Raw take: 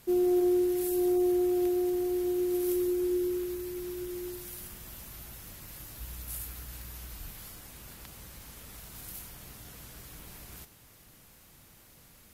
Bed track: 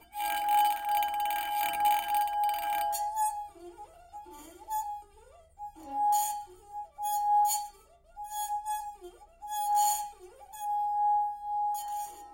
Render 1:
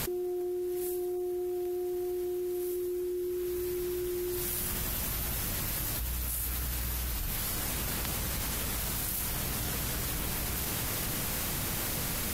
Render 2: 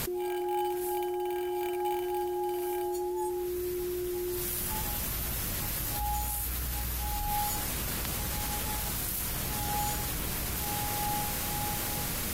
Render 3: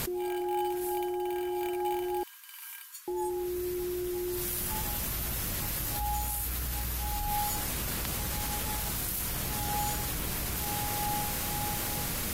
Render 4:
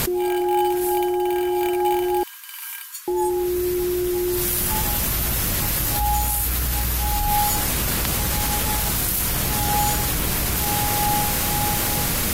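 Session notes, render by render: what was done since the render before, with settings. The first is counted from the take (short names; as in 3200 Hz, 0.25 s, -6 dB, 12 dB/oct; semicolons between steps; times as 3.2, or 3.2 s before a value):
limiter -29.5 dBFS, peak gain reduction 10.5 dB; fast leveller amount 100%
add bed track -8.5 dB
2.23–3.08 brick-wall FIR high-pass 920 Hz
gain +11 dB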